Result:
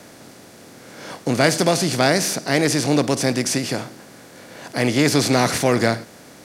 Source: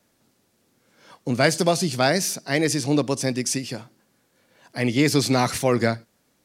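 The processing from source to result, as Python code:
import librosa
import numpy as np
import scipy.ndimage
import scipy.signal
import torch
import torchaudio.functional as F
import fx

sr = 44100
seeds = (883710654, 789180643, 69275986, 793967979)

y = fx.bin_compress(x, sr, power=0.6)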